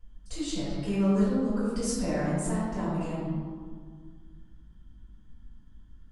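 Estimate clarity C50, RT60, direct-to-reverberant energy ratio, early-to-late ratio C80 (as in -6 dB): -3.5 dB, 1.9 s, -16.0 dB, -0.5 dB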